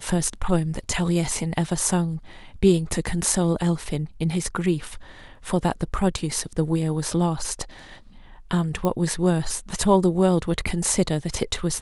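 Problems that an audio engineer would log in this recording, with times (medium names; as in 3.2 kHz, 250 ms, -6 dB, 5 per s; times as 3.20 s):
8.85 s: pop -12 dBFS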